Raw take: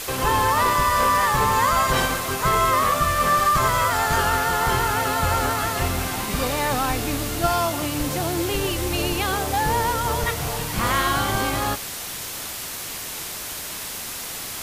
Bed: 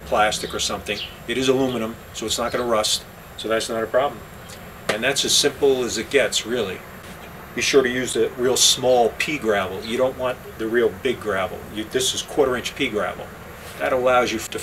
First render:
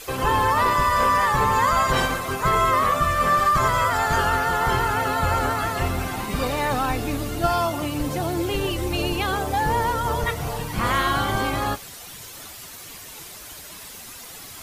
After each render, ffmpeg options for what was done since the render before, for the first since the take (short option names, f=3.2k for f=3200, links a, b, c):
-af "afftdn=nr=10:nf=-32"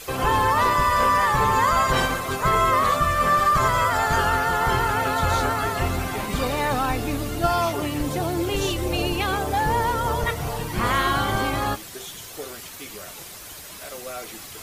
-filter_complex "[1:a]volume=-18.5dB[a];[0:a][a]amix=inputs=2:normalize=0"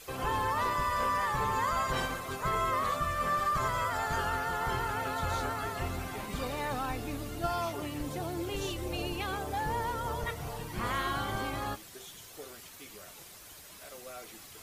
-af "volume=-11dB"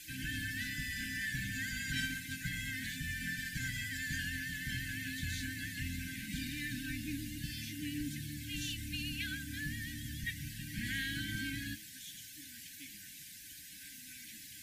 -af "afftfilt=real='re*(1-between(b*sr/4096,320,1500))':imag='im*(1-between(b*sr/4096,320,1500))':win_size=4096:overlap=0.75,lowshelf=f=74:g=-10.5"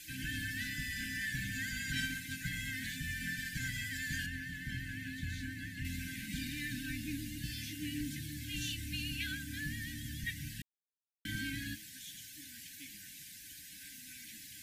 -filter_complex "[0:a]asettb=1/sr,asplit=3[a][b][c];[a]atrim=end=4.264[d];[b]atrim=start=4.26:end=5.85,asetpts=PTS-STARTPTS,afade=t=in:d=0.004:c=qsin,afade=t=out:st=1.586:d=0.004:c=qsin,highshelf=f=2.6k:g=-9.5[e];[c]atrim=start=5.846[f];[d][e]acrossfade=d=0.004:c1=hsin:c2=qsin[g];[g][f]acrossfade=d=0.004:c1=qsin:c2=hsin,asettb=1/sr,asplit=3[h][i][j];[h]atrim=end=7.444[k];[i]atrim=start=7.44:end=9.32,asetpts=PTS-STARTPTS,afade=t=in:d=0.004:c=qsin,afade=t=out:st=1.876:d=0.004:c=qsin,asplit=2[l][m];[m]adelay=16,volume=-8dB[n];[l][n]amix=inputs=2:normalize=0,atrim=end_sample=82908[o];[j]atrim=start=9.316[p];[k][o]acrossfade=d=0.004:c1=hsin:c2=qsin[q];[q][p]acrossfade=d=0.004:c1=qsin:c2=hsin,asplit=3[r][s][t];[r]atrim=end=10.62,asetpts=PTS-STARTPTS,afade=t=out:st=10.616:d=0.004:c=hsin[u];[s]atrim=start=10.62:end=11.25,asetpts=PTS-STARTPTS,volume=0[v];[t]atrim=start=11.25,asetpts=PTS-STARTPTS,afade=t=in:d=0.004:c=hsin[w];[u][v][w]concat=n=3:v=0:a=1"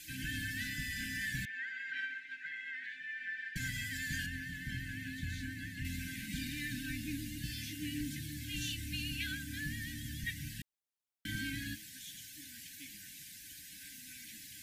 -filter_complex "[0:a]asettb=1/sr,asplit=3[a][b][c];[a]atrim=end=1.454[d];[b]atrim=start=1.45:end=3.56,asetpts=PTS-STARTPTS,afade=t=in:d=0.004:c=qsin,afade=t=out:st=2.106:d=0.004:c=qsin,asuperpass=centerf=1300:order=4:qfactor=0.81[e];[c]atrim=start=3.556[f];[d][e]acrossfade=d=0.004:c1=hsin:c2=qsin[g];[g][f]acrossfade=d=0.004:c1=qsin:c2=hsin"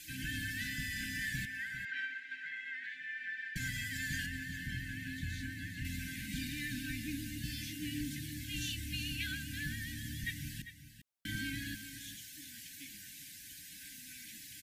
-af "aecho=1:1:398:0.251"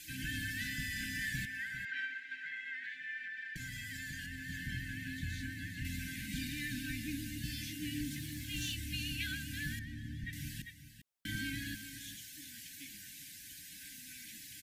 -filter_complex "[0:a]asettb=1/sr,asplit=3[a][b][c];[a]atrim=end=3.184[d];[b]atrim=start=3.18:end=4.48,asetpts=PTS-STARTPTS,afade=t=in:d=0.004:c=qsin,afade=t=out:st=1.296:d=0.004:c=qsin,acompressor=threshold=-40dB:ratio=6:attack=3.2:release=140:knee=1:detection=peak[e];[c]atrim=start=4.476[f];[d][e]acrossfade=d=0.004:c1=hsin:c2=qsin[g];[g][f]acrossfade=d=0.004:c1=qsin:c2=hsin,asettb=1/sr,asplit=3[h][i][j];[h]atrim=end=8.114[k];[i]atrim=start=8.11:end=8.75,asetpts=PTS-STARTPTS,afade=t=in:d=0.004:c=qsin,afade=t=out:st=0.636:d=0.004:c=qsin,acrusher=bits=6:mode=log:mix=0:aa=0.000001[l];[j]atrim=start=8.746[m];[k][l]acrossfade=d=0.004:c1=hsin:c2=qsin[n];[n][m]acrossfade=d=0.004:c1=qsin:c2=hsin,asettb=1/sr,asplit=3[o][p][q];[o]atrim=end=9.794[r];[p]atrim=start=9.79:end=10.33,asetpts=PTS-STARTPTS,afade=t=in:d=0.004:c=qsin,afade=t=out:st=0.536:d=0.004:c=qsin,lowpass=f=1.1k:p=1[s];[q]atrim=start=10.326[t];[r][s]acrossfade=d=0.004:c1=hsin:c2=qsin[u];[u][t]acrossfade=d=0.004:c1=qsin:c2=hsin"